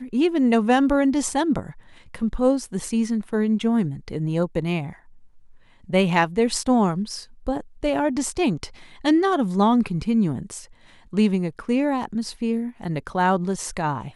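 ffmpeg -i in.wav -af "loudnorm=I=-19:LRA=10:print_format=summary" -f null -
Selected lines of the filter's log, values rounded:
Input Integrated:    -23.0 LUFS
Input True Peak:      -5.7 dBTP
Input LRA:             2.7 LU
Input Threshold:     -33.4 LUFS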